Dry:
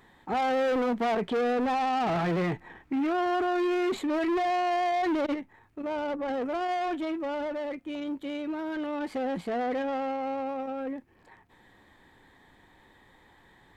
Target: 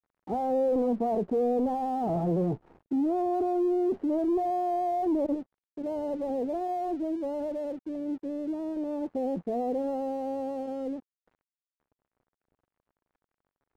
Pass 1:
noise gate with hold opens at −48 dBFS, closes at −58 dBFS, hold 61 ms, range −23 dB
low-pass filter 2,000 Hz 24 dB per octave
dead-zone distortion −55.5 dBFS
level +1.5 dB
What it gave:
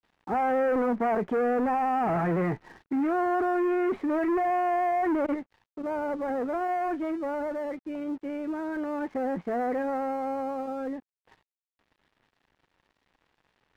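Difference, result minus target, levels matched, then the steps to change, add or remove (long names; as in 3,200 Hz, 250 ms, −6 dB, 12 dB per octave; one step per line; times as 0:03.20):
2,000 Hz band +19.5 dB
change: low-pass filter 730 Hz 24 dB per octave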